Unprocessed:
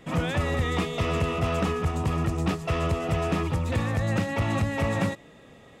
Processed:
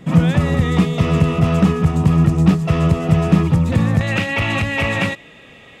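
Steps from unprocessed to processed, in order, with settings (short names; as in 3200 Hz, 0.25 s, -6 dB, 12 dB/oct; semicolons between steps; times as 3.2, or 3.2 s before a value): bell 170 Hz +13 dB 1.1 oct, from 4.01 s 2600 Hz; gain +4.5 dB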